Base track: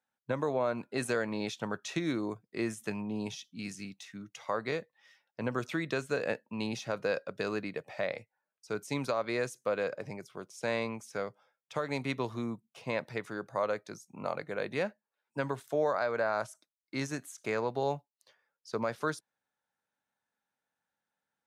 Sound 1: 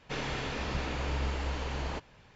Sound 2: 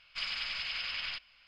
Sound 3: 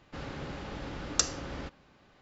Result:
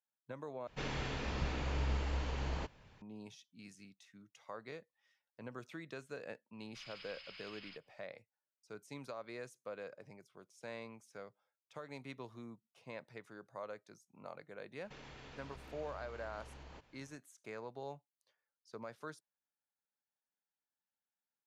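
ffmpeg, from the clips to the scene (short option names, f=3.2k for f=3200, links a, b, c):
-filter_complex "[1:a]asplit=2[a][b];[0:a]volume=-14.5dB[c];[a]lowshelf=f=220:g=4[d];[b]acompressor=threshold=-40dB:ratio=6:attack=3.2:release=140:knee=1:detection=peak[e];[c]asplit=2[f][g];[f]atrim=end=0.674[h];[d]atrim=end=2.35,asetpts=PTS-STARTPTS,volume=-6dB[i];[g]atrim=start=3.016[j];[2:a]atrim=end=1.47,asetpts=PTS-STARTPTS,volume=-17dB,afade=t=in:d=0.004:c=hsin,afade=t=out:st=1.466:d=0.004:c=hsin,adelay=6590[k];[e]atrim=end=2.35,asetpts=PTS-STARTPTS,volume=-10dB,afade=t=in:d=0.004:c=hsin,afade=t=out:st=2.346:d=0.004:c=hsin,adelay=14810[l];[h][i]acrossfade=d=0.004:c1=hsin:c2=hsin[m];[m][j]acrossfade=d=0.004:c1=hsin:c2=hsin[n];[n][k][l]amix=inputs=3:normalize=0"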